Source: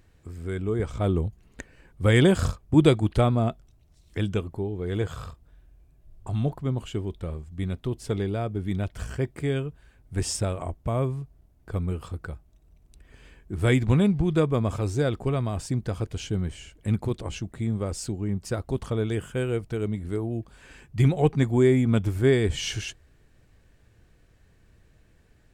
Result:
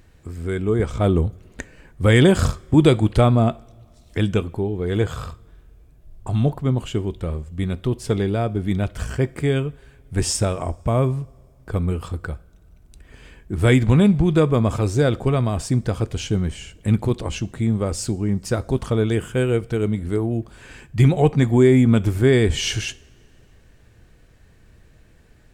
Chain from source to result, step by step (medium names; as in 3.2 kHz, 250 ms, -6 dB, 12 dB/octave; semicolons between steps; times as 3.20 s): in parallel at +1.5 dB: peak limiter -14 dBFS, peak gain reduction 10 dB; on the sum: two-slope reverb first 0.43 s, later 2.5 s, from -19 dB, DRR 16.5 dB